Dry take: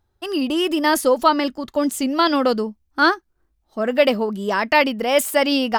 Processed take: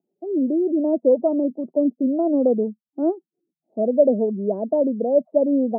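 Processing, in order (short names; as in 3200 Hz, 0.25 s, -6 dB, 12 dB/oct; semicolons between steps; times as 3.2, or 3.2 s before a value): spectral gate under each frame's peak -25 dB strong; Chebyshev band-pass 170–670 Hz, order 4; gain +1.5 dB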